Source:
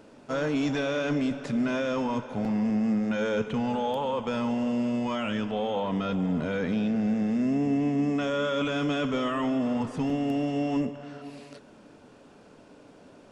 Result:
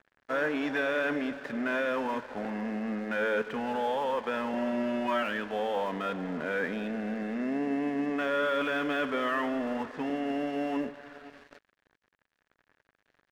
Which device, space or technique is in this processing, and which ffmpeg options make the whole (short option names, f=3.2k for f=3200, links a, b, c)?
pocket radio on a weak battery: -filter_complex "[0:a]asettb=1/sr,asplit=3[a][b][c];[a]atrim=end=4.534[d];[b]atrim=start=4.53:end=5.23,asetpts=PTS-STARTPTS,afade=t=in:d=0.004:c=qsin,afade=t=out:st=0.696:d=0.004:c=qsin,aecho=1:1:5.2:0.85,atrim=end_sample=30870[e];[c]atrim=start=5.226[f];[d][e]acrossfade=d=0.004:c1=hsin:c2=qsin[g];[g][f]acrossfade=d=0.004:c1=qsin:c2=hsin,highpass=320,lowpass=3k,aeval=exprs='sgn(val(0))*max(abs(val(0))-0.00376,0)':c=same,equalizer=f=1.7k:t=o:w=0.41:g=9.5"